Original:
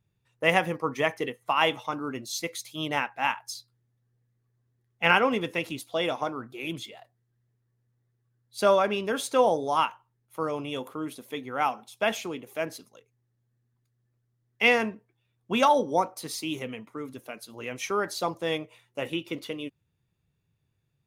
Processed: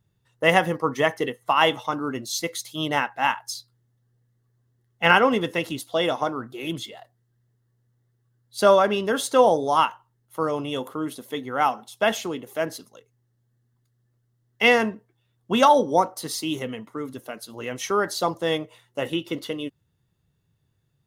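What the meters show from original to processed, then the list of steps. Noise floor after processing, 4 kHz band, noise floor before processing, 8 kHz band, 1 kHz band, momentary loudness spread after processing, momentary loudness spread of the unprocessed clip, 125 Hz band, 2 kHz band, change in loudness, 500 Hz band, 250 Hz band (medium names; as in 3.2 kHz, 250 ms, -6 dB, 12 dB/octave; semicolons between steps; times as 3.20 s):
-70 dBFS, +4.5 dB, -75 dBFS, +5.0 dB, +5.0 dB, 16 LU, 16 LU, +5.0 dB, +3.5 dB, +4.5 dB, +5.0 dB, +5.0 dB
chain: band-stop 2.4 kHz, Q 5.1; trim +5 dB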